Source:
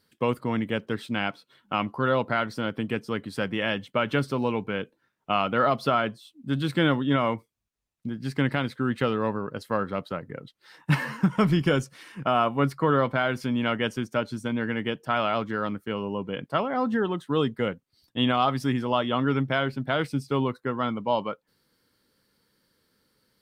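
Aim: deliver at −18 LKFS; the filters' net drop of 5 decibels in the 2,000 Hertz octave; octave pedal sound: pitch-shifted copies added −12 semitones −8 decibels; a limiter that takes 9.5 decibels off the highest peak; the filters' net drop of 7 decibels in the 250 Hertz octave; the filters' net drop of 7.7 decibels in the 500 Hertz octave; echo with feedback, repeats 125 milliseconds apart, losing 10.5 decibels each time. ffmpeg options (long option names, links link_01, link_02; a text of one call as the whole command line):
ffmpeg -i in.wav -filter_complex "[0:a]equalizer=frequency=250:width_type=o:gain=-7,equalizer=frequency=500:width_type=o:gain=-7.5,equalizer=frequency=2000:width_type=o:gain=-6.5,alimiter=limit=-24dB:level=0:latency=1,aecho=1:1:125|250|375:0.299|0.0896|0.0269,asplit=2[link_01][link_02];[link_02]asetrate=22050,aresample=44100,atempo=2,volume=-8dB[link_03];[link_01][link_03]amix=inputs=2:normalize=0,volume=17.5dB" out.wav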